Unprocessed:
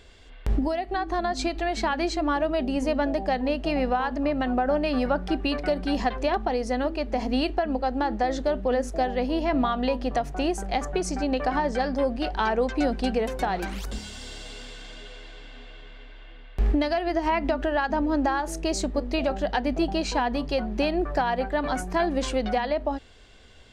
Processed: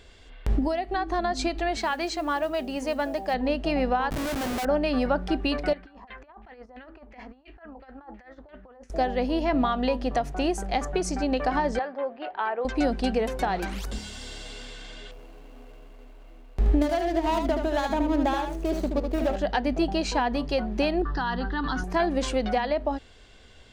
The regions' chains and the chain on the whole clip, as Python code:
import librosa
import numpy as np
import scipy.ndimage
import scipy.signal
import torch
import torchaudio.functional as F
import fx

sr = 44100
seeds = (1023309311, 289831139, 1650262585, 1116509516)

y = fx.chain(x, sr, fx.low_shelf(hz=300.0, db=-11.0),
    fx.mod_noise(seeds[0], snr_db=31), at=(1.77, 3.34))
y = fx.chain(y, sr, fx.low_shelf(hz=360.0, db=-8.0),
    fx.notch(hz=480.0, q=9.8),
    fx.schmitt(flips_db=-33.0), at=(4.1, 4.65))
y = fx.chain(y, sr, fx.pre_emphasis(coefficient=0.9),
    fx.over_compress(threshold_db=-46.0, ratio=-0.5),
    fx.filter_lfo_lowpass(shape='saw_down', hz=2.9, low_hz=850.0, high_hz=2400.0, q=2.6), at=(5.73, 8.9))
y = fx.chain(y, sr, fx.bandpass_edges(low_hz=570.0, high_hz=5100.0),
    fx.air_absorb(metres=460.0), at=(11.79, 12.65))
y = fx.chain(y, sr, fx.median_filter(points=25),
    fx.echo_single(ms=76, db=-6.0), at=(15.11, 19.36))
y = fx.chain(y, sr, fx.lowpass(hz=7200.0, slope=24),
    fx.fixed_phaser(hz=2300.0, stages=6),
    fx.env_flatten(amount_pct=70), at=(21.02, 21.84))